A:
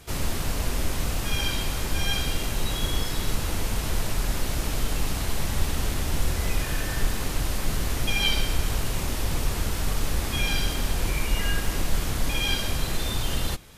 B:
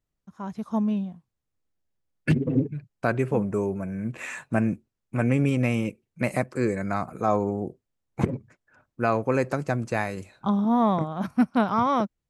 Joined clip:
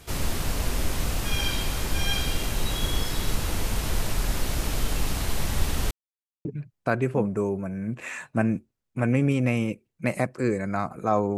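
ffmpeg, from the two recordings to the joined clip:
-filter_complex "[0:a]apad=whole_dur=11.37,atrim=end=11.37,asplit=2[a][b];[a]atrim=end=5.91,asetpts=PTS-STARTPTS,afade=t=out:st=5.906:d=0.004:c=hsin[c];[b]atrim=start=5.91:end=6.45,asetpts=PTS-STARTPTS,volume=0[d];[1:a]atrim=start=2.62:end=7.54,asetpts=PTS-STARTPTS,afade=t=in:d=0.004:c=hsin[e];[c][d][e]concat=n=3:v=0:a=1"

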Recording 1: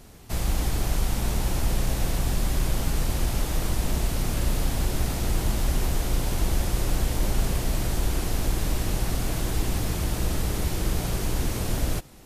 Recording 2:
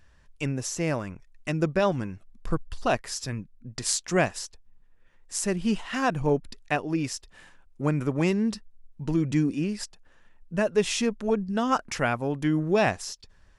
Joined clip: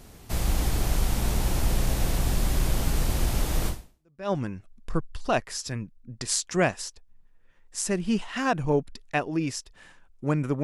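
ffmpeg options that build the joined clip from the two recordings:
-filter_complex "[0:a]apad=whole_dur=10.63,atrim=end=10.63,atrim=end=4.32,asetpts=PTS-STARTPTS[a];[1:a]atrim=start=1.25:end=8.2,asetpts=PTS-STARTPTS[b];[a][b]acrossfade=d=0.64:c1=exp:c2=exp"

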